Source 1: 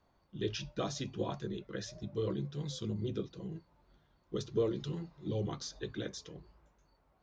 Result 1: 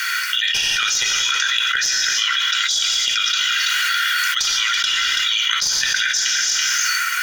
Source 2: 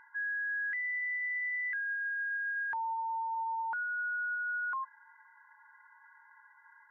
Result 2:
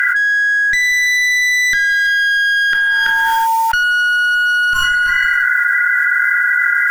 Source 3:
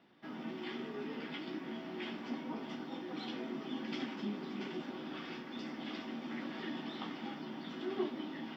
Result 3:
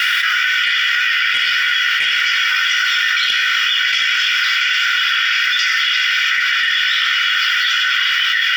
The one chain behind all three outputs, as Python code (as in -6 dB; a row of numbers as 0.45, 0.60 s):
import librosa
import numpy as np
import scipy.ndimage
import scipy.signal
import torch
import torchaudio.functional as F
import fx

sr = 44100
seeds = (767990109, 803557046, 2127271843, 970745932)

p1 = scipy.signal.sosfilt(scipy.signal.butter(12, 1400.0, 'highpass', fs=sr, output='sos'), x)
p2 = fx.peak_eq(p1, sr, hz=4000.0, db=-8.0, octaves=0.27)
p3 = p2 + 0.62 * np.pad(p2, (int(2.1 * sr / 1000.0), 0))[:len(p2)]
p4 = fx.rider(p3, sr, range_db=3, speed_s=0.5)
p5 = p3 + (p4 * 10.0 ** (1.0 / 20.0))
p6 = fx.clip_asym(p5, sr, top_db=-33.0, bottom_db=-24.0)
p7 = p6 + 10.0 ** (-16.5 / 20.0) * np.pad(p6, (int(331 * sr / 1000.0), 0))[:len(p6)]
p8 = fx.rev_gated(p7, sr, seeds[0], gate_ms=410, shape='falling', drr_db=6.0)
p9 = fx.env_flatten(p8, sr, amount_pct=100)
y = librosa.util.normalize(p9) * 10.0 ** (-3 / 20.0)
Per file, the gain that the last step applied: +15.0, +13.0, +21.0 dB